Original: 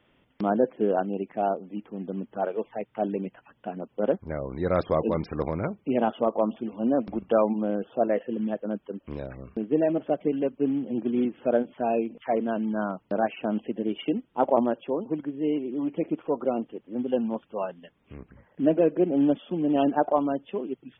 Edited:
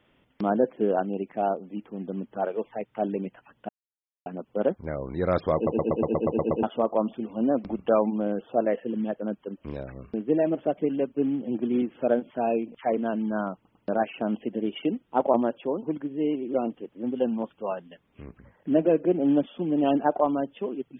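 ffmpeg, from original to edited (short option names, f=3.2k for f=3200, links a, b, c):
-filter_complex "[0:a]asplit=14[a][b][c][d][e][f][g][h][i][j][k][l][m][n];[a]atrim=end=3.69,asetpts=PTS-STARTPTS,afade=t=out:st=3.686:d=0.004:c=hsin,apad=pad_dur=0.57[o];[b]atrim=start=3.69:end=5.102,asetpts=PTS-STARTPTS,afade=t=in:d=0.004:c=hsin[p];[c]atrim=start=4.978:end=5.102[q];[d]atrim=start=4.978:end=5.102[r];[e]atrim=start=4.978:end=5.102[s];[f]atrim=start=4.978:end=5.102[t];[g]atrim=start=4.978:end=5.102[u];[h]atrim=start=4.978:end=5.102[v];[i]atrim=start=4.978:end=5.102[w];[j]atrim=start=4.978:end=5.102[x];[k]atrim=start=6.058:end=13.082[y];[l]atrim=start=12.978:end=13.082[z];[m]atrim=start=12.978:end=15.772[aa];[n]atrim=start=16.458[ab];[o][p]concat=n=2:v=0:a=1[ac];[ac][q]acrossfade=d=0.004:c1=hsin:c2=hsin[ad];[ad][r]acrossfade=d=0.004:c1=hsin:c2=hsin[ae];[ae][s]acrossfade=d=0.004:c1=hsin:c2=hsin[af];[af][t]acrossfade=d=0.004:c1=hsin:c2=hsin[ag];[ag][u]acrossfade=d=0.004:c1=hsin:c2=hsin[ah];[ah][v]acrossfade=d=0.004:c1=hsin:c2=hsin[ai];[ai][w]acrossfade=d=0.004:c1=hsin:c2=hsin[aj];[aj][x]acrossfade=d=0.004:c1=hsin:c2=hsin[ak];[ak][y]acrossfade=d=0.004:c1=hsin:c2=hsin[al];[al][z]acrossfade=d=0.004:c1=hsin:c2=hsin[am];[am][aa]acrossfade=d=0.004:c1=hsin:c2=hsin[an];[an][ab]acrossfade=d=0.004:c1=hsin:c2=hsin"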